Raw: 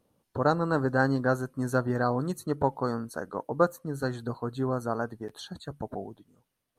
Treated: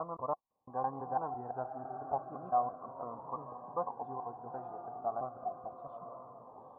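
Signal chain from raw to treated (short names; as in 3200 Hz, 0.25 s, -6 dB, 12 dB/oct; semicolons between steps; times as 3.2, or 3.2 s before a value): slices in reverse order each 0.168 s, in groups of 4; vocal tract filter a; on a send: diffused feedback echo 0.945 s, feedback 54%, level -8.5 dB; on the sum: cascading phaser falling 0.33 Hz; gain +6.5 dB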